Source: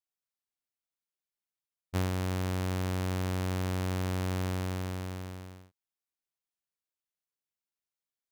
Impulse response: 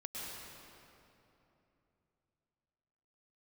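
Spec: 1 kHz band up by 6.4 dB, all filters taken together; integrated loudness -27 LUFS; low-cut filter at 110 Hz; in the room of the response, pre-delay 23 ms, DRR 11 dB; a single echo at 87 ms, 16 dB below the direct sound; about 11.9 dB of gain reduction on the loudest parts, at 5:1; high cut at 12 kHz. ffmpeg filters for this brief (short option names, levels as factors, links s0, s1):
-filter_complex "[0:a]highpass=110,lowpass=12000,equalizer=f=1000:t=o:g=8,acompressor=threshold=0.0141:ratio=5,aecho=1:1:87:0.158,asplit=2[s0][s1];[1:a]atrim=start_sample=2205,adelay=23[s2];[s1][s2]afir=irnorm=-1:irlink=0,volume=0.266[s3];[s0][s3]amix=inputs=2:normalize=0,volume=6.68"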